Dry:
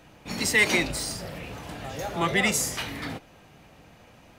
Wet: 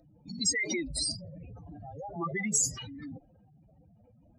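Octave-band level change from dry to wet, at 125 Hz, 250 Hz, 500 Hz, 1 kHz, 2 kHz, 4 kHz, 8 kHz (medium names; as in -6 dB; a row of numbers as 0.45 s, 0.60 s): -6.5 dB, -5.5 dB, -10.0 dB, -10.5 dB, -11.5 dB, -5.0 dB, 0.0 dB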